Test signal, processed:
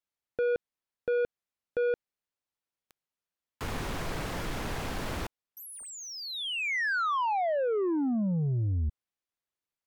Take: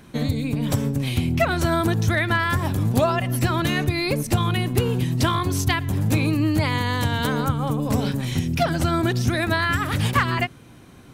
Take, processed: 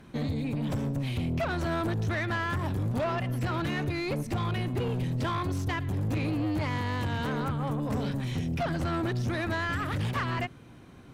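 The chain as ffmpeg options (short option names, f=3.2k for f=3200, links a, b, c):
-filter_complex "[0:a]asoftclip=type=tanh:threshold=-21.5dB,acrossover=split=2500[a][b];[b]acompressor=threshold=-32dB:ratio=4:attack=1:release=60[c];[a][c]amix=inputs=2:normalize=0,aemphasis=mode=reproduction:type=cd,volume=-4dB"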